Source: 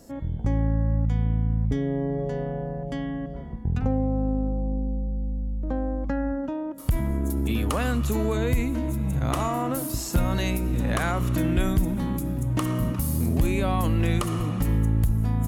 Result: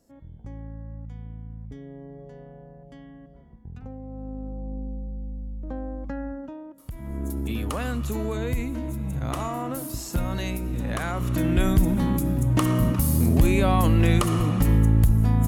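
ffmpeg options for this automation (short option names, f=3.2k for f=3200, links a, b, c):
-af "volume=13.5dB,afade=t=in:st=4.01:d=0.81:silence=0.334965,afade=t=out:st=6.22:d=0.75:silence=0.334965,afade=t=in:st=6.97:d=0.26:silence=0.266073,afade=t=in:st=11.09:d=0.82:silence=0.421697"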